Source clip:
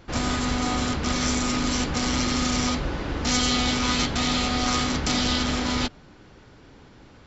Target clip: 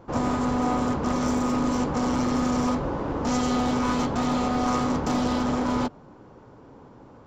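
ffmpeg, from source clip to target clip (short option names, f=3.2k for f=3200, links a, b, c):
-af "equalizer=f=125:t=o:w=1:g=7,equalizer=f=250:t=o:w=1:g=7,equalizer=f=500:t=o:w=1:g=9,equalizer=f=1k:t=o:w=1:g=12,equalizer=f=2k:t=o:w=1:g=-4,equalizer=f=4k:t=o:w=1:g=-6,aeval=exprs='clip(val(0),-1,0.211)':c=same,volume=-7.5dB"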